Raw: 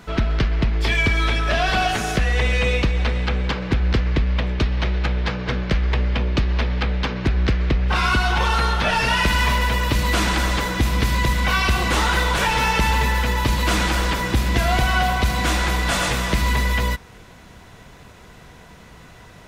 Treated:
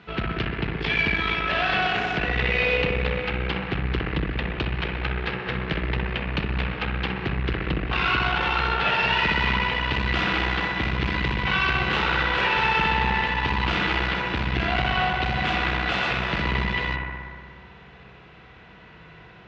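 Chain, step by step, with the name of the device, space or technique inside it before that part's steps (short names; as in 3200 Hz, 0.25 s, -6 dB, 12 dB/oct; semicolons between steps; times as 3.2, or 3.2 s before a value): analogue delay pedal into a guitar amplifier (analogue delay 62 ms, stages 1024, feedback 81%, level -4 dB; tube stage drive 15 dB, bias 0.7; speaker cabinet 79–3900 Hz, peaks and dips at 99 Hz -8 dB, 250 Hz -6 dB, 610 Hz -5 dB, 1000 Hz -3 dB, 2700 Hz +5 dB)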